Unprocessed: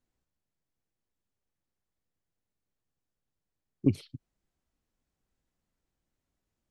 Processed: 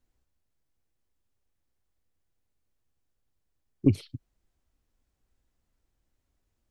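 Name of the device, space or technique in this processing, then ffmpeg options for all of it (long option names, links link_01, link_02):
low shelf boost with a cut just above: -af "lowshelf=frequency=110:gain=8,equalizer=frequency=170:width_type=o:width=0.61:gain=-6,volume=3dB"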